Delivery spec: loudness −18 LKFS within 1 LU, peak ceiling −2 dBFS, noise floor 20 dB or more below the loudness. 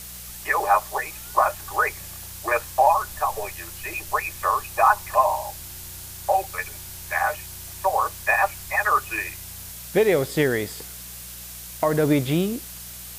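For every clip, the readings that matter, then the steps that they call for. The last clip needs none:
mains hum 60 Hz; hum harmonics up to 180 Hz; level of the hum −44 dBFS; background noise floor −39 dBFS; target noise floor −44 dBFS; integrated loudness −23.5 LKFS; sample peak −5.0 dBFS; target loudness −18.0 LKFS
→ hum removal 60 Hz, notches 3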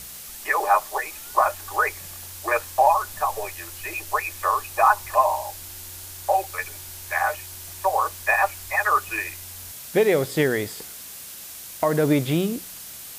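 mains hum none found; background noise floor −39 dBFS; target noise floor −44 dBFS
→ noise reduction from a noise print 6 dB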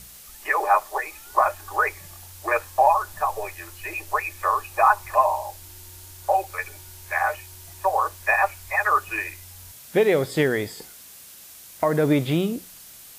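background noise floor −45 dBFS; integrated loudness −23.5 LKFS; sample peak −5.0 dBFS; target loudness −18.0 LKFS
→ level +5.5 dB
brickwall limiter −2 dBFS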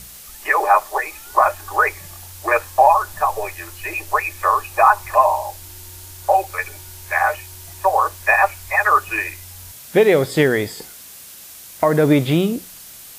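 integrated loudness −18.0 LKFS; sample peak −2.0 dBFS; background noise floor −40 dBFS

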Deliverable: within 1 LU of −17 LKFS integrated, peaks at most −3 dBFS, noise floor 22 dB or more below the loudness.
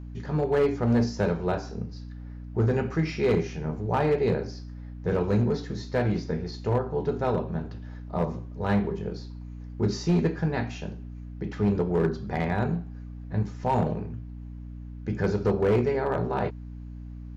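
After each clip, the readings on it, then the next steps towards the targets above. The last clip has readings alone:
share of clipped samples 1.0%; peaks flattened at −17.0 dBFS; mains hum 60 Hz; hum harmonics up to 300 Hz; level of the hum −37 dBFS; integrated loudness −27.5 LKFS; sample peak −17.0 dBFS; target loudness −17.0 LKFS
→ clipped peaks rebuilt −17 dBFS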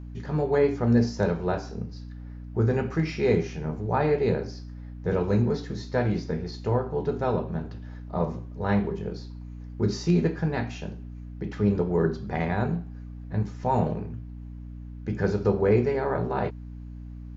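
share of clipped samples 0.0%; mains hum 60 Hz; hum harmonics up to 300 Hz; level of the hum −36 dBFS
→ hum removal 60 Hz, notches 5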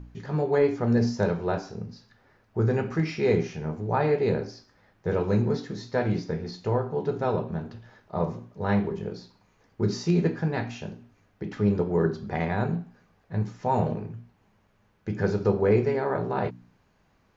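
mains hum none found; integrated loudness −27.0 LKFS; sample peak −10.0 dBFS; target loudness −17.0 LKFS
→ level +10 dB
brickwall limiter −3 dBFS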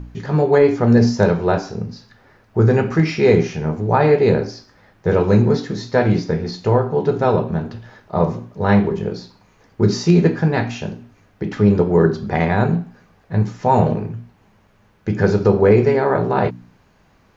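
integrated loudness −17.5 LKFS; sample peak −3.0 dBFS; background noise floor −55 dBFS

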